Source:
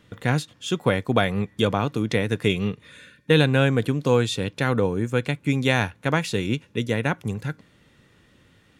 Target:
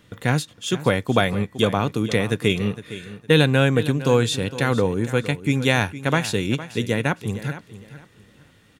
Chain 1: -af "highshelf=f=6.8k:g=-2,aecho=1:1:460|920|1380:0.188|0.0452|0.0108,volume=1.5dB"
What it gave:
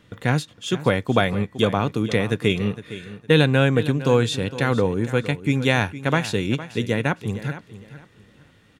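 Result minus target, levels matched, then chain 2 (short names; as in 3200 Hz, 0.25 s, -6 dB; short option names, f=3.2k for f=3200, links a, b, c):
8000 Hz band -4.0 dB
-af "highshelf=f=6.8k:g=6,aecho=1:1:460|920|1380:0.188|0.0452|0.0108,volume=1.5dB"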